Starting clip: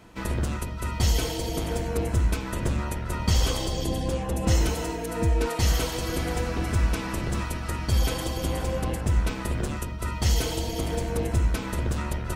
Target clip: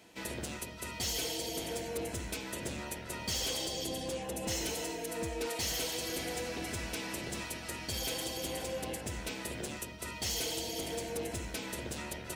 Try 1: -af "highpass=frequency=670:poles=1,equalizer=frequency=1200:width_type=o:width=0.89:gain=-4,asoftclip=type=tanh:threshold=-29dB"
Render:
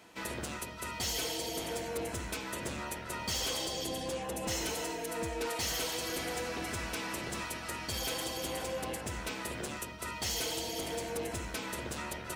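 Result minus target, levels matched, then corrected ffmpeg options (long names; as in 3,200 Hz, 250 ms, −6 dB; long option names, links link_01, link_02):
1,000 Hz band +3.5 dB
-af "highpass=frequency=670:poles=1,equalizer=frequency=1200:width_type=o:width=0.89:gain=-12,asoftclip=type=tanh:threshold=-29dB"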